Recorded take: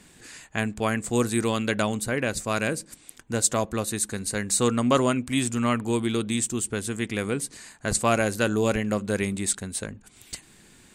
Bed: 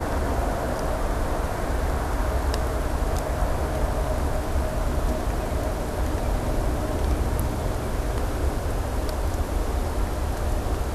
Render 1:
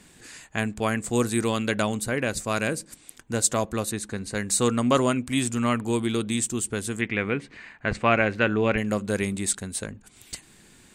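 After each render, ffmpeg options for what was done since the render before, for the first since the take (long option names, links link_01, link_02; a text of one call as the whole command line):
ffmpeg -i in.wav -filter_complex "[0:a]asettb=1/sr,asplit=3[link_01][link_02][link_03];[link_01]atrim=end=3.914[link_04];[link_02]atrim=start=3.91:end=4.35,asetpts=PTS-STARTPTS,afade=type=in:duration=0.004:curve=qsin,afade=type=out:start_time=0.436:duration=0.004:curve=qsin,aemphasis=mode=reproduction:type=50fm[link_05];[link_03]atrim=start=4.346[link_06];[link_04][link_05]acrossfade=duration=0.004:curve1=hsin:curve2=qsin[link_07];[link_07][link_06]acrossfade=duration=0.004:curve1=qsin:curve2=hsin,asettb=1/sr,asplit=3[link_08][link_09][link_10];[link_08]atrim=end=7.014[link_11];[link_09]atrim=start=7.01:end=8.78,asetpts=PTS-STARTPTS,afade=type=in:duration=0.004:curve=qsin,afade=type=out:start_time=1.766:duration=0.004:curve=qsin,lowpass=frequency=2300:width_type=q:width=2.2[link_12];[link_10]atrim=start=8.776[link_13];[link_11][link_12]acrossfade=duration=0.004:curve1=hsin:curve2=qsin[link_14];[link_14][link_13]acrossfade=duration=0.004:curve1=qsin:curve2=hsin" out.wav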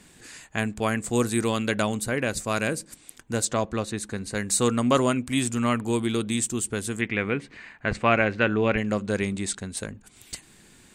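ffmpeg -i in.wav -filter_complex "[0:a]asplit=3[link_01][link_02][link_03];[link_01]afade=type=out:start_time=3.44:duration=0.02[link_04];[link_02]lowpass=5400,afade=type=in:start_time=3.44:duration=0.02,afade=type=out:start_time=3.96:duration=0.02[link_05];[link_03]afade=type=in:start_time=3.96:duration=0.02[link_06];[link_04][link_05][link_06]amix=inputs=3:normalize=0,asettb=1/sr,asplit=3[link_07][link_08][link_09];[link_07]atrim=end=8.244[link_10];[link_08]atrim=start=8.24:end=9.77,asetpts=PTS-STARTPTS,afade=type=in:duration=0.004:curve=qsin,afade=type=out:start_time=1.526:duration=0.004:curve=qsin,lowpass=6800[link_11];[link_09]atrim=start=9.766[link_12];[link_10][link_11]acrossfade=duration=0.004:curve1=hsin:curve2=qsin[link_13];[link_13][link_12]acrossfade=duration=0.004:curve1=qsin:curve2=hsin" out.wav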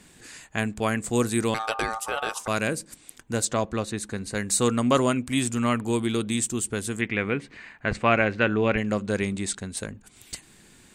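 ffmpeg -i in.wav -filter_complex "[0:a]asettb=1/sr,asplit=3[link_01][link_02][link_03];[link_01]atrim=end=1.544[link_04];[link_02]atrim=start=1.54:end=2.48,asetpts=PTS-STARTPTS,afade=type=in:duration=0.004:curve=qsin,afade=type=out:start_time=0.936:duration=0.004:curve=qsin,aeval=exprs='val(0)*sin(2*PI*1000*n/s)':channel_layout=same[link_05];[link_03]atrim=start=2.476[link_06];[link_04][link_05]acrossfade=duration=0.004:curve1=hsin:curve2=qsin[link_07];[link_07][link_06]acrossfade=duration=0.004:curve1=qsin:curve2=hsin" out.wav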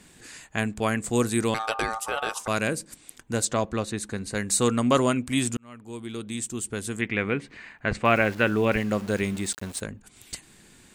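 ffmpeg -i in.wav -filter_complex "[0:a]asettb=1/sr,asplit=3[link_01][link_02][link_03];[link_01]atrim=end=8.054[link_04];[link_02]atrim=start=8.05:end=9.81,asetpts=PTS-STARTPTS,afade=type=in:duration=0.004:curve=qsin,afade=type=out:start_time=1.756:duration=0.004:curve=qsin,aeval=exprs='val(0)*gte(abs(val(0)),0.0119)':channel_layout=same[link_05];[link_03]atrim=start=9.806[link_06];[link_04][link_05]acrossfade=duration=0.004:curve1=hsin:curve2=qsin[link_07];[link_07][link_06]acrossfade=duration=0.004:curve1=qsin:curve2=hsin,asplit=2[link_08][link_09];[link_08]atrim=end=5.57,asetpts=PTS-STARTPTS,afade=type=out:start_time=5.566:duration=0.004:curve=hsin[link_10];[link_09]atrim=start=5.57,asetpts=PTS-STARTPTS,afade=type=in:duration=1.61[link_11];[link_10][link_11]concat=n=2:v=0:a=1" out.wav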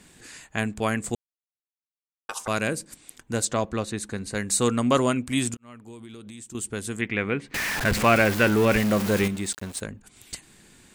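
ffmpeg -i in.wav -filter_complex "[0:a]asettb=1/sr,asplit=3[link_01][link_02][link_03];[link_01]atrim=end=5.544[link_04];[link_02]atrim=start=5.54:end=6.55,asetpts=PTS-STARTPTS,afade=type=in:duration=0.004:curve=qsin,afade=type=out:start_time=1.006:duration=0.004:curve=qsin,acompressor=threshold=-38dB:ratio=10:attack=3.2:release=140:knee=1:detection=peak[link_05];[link_03]atrim=start=6.546[link_06];[link_04][link_05]acrossfade=duration=0.004:curve1=hsin:curve2=qsin[link_07];[link_07][link_06]acrossfade=duration=0.004:curve1=qsin:curve2=hsin,asettb=1/sr,asplit=3[link_08][link_09][link_10];[link_08]atrim=end=7.544[link_11];[link_09]atrim=start=7.54:end=9.28,asetpts=PTS-STARTPTS,afade=type=in:duration=0.004:curve=qsin,afade=type=out:start_time=1.736:duration=0.004:curve=qsin,aeval=exprs='val(0)+0.5*0.075*sgn(val(0))':channel_layout=same[link_12];[link_10]atrim=start=9.276[link_13];[link_11][link_12]acrossfade=duration=0.004:curve1=hsin:curve2=qsin[link_14];[link_14][link_13]acrossfade=duration=0.004:curve1=qsin:curve2=hsin,asplit=3[link_15][link_16][link_17];[link_15]atrim=end=1.15,asetpts=PTS-STARTPTS,afade=type=out:start_time=1.146:duration=0.004:curve=hsin[link_18];[link_16]atrim=start=1.15:end=2.29,asetpts=PTS-STARTPTS,volume=0[link_19];[link_17]atrim=start=2.29,asetpts=PTS-STARTPTS,afade=type=in:duration=0.004:curve=hsin[link_20];[link_18][link_19][link_20]concat=n=3:v=0:a=1" out.wav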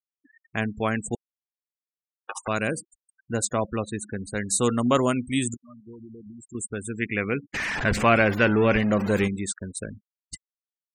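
ffmpeg -i in.wav -af "afftfilt=real='re*gte(hypot(re,im),0.0251)':imag='im*gte(hypot(re,im),0.0251)':win_size=1024:overlap=0.75,equalizer=frequency=4600:width_type=o:width=0.65:gain=-3.5" out.wav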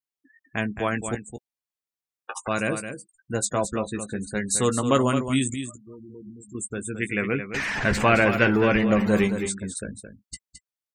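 ffmpeg -i in.wav -filter_complex "[0:a]asplit=2[link_01][link_02];[link_02]adelay=15,volume=-9dB[link_03];[link_01][link_03]amix=inputs=2:normalize=0,aecho=1:1:217:0.355" out.wav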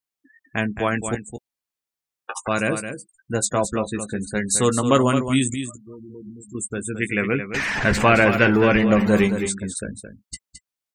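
ffmpeg -i in.wav -af "volume=3.5dB,alimiter=limit=-3dB:level=0:latency=1" out.wav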